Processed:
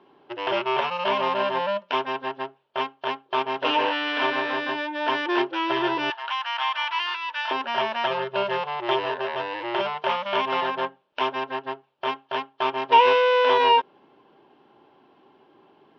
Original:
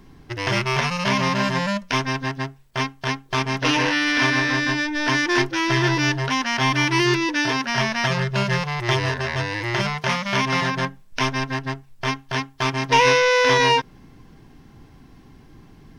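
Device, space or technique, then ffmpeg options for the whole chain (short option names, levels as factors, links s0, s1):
phone earpiece: -filter_complex "[0:a]asettb=1/sr,asplit=3[s0][s1][s2];[s0]atrim=end=6.104[s3];[s1]atrim=start=6.1:end=7.51,asetpts=PTS-STARTPTS,afade=t=in:d=0.004:c=qsin,afade=t=out:st=1.406:d=0.004:c=qsin,highpass=f=930:w=0.5412,highpass=f=930:w=1.3066[s4];[s2]atrim=start=7.506[s5];[s3][s4]acrossfade=d=0.004:c1=hsin:c2=qsin[s6];[s6][s5]acrossfade=d=0.004:c1=qsin:c2=hsin,highpass=380,equalizer=f=380:t=q:w=4:g=9,equalizer=f=580:t=q:w=4:g=9,equalizer=f=880:t=q:w=4:g=9,equalizer=f=1300:t=q:w=4:g=3,equalizer=f=2000:t=q:w=4:g=-7,equalizer=f=3000:t=q:w=4:g=6,lowpass=f=3500:w=0.5412,lowpass=f=3500:w=1.3066,volume=0.531"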